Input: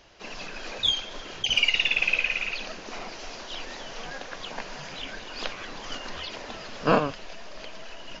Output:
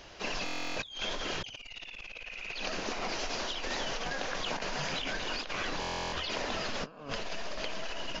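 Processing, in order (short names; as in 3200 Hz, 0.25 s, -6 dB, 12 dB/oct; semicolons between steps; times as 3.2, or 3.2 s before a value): de-hum 112.4 Hz, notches 20; negative-ratio compressor -38 dBFS, ratio -1; stuck buffer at 0.44/5.8, samples 1024, times 13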